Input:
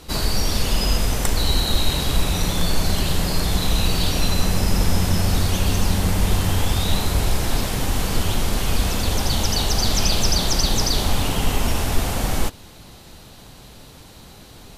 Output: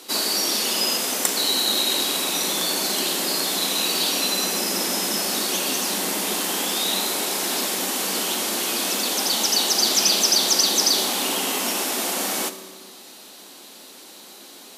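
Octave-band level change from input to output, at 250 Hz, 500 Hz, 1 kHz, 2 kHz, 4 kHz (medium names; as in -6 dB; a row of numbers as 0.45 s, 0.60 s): -5.0 dB, -0.5 dB, -0.5 dB, +1.0 dB, +4.0 dB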